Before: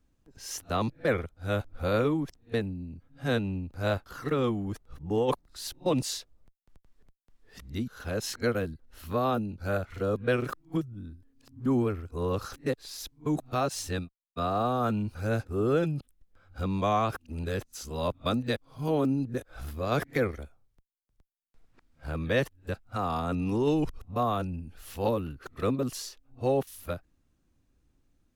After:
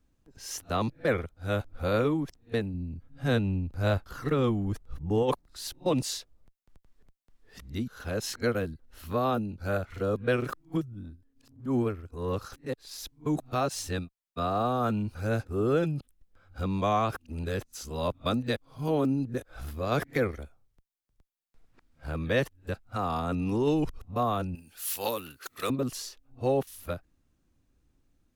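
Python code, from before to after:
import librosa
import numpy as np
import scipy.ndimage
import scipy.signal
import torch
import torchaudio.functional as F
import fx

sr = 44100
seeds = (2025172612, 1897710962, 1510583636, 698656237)

y = fx.low_shelf(x, sr, hz=120.0, db=8.5, at=(2.74, 5.23))
y = fx.transient(y, sr, attack_db=-9, sustain_db=-5, at=(11.03, 13.04))
y = fx.tilt_eq(y, sr, slope=4.5, at=(24.55, 25.7))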